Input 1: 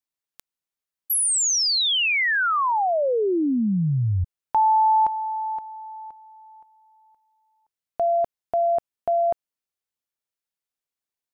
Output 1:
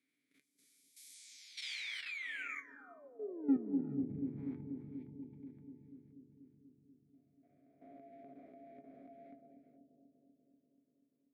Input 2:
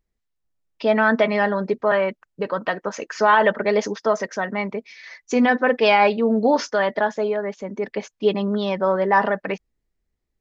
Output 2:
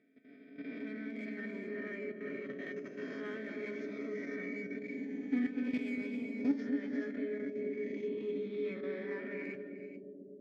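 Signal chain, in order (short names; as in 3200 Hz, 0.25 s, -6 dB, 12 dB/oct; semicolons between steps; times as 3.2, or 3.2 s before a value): spectral swells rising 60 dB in 1.57 s; vowel filter i; high shelf 3800 Hz -9 dB; in parallel at -4 dB: soft clip -31 dBFS; on the sum: bell 3000 Hz -14 dB 0.25 oct; resonator 140 Hz, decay 0.95 s, harmonics odd, mix 50%; non-linear reverb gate 0.45 s rising, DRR 5.5 dB; level quantiser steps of 14 dB; HPF 57 Hz; resonator 140 Hz, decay 0.15 s, harmonics all, mix 70%; analogue delay 0.242 s, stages 1024, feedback 76%, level -5 dB; gain +4 dB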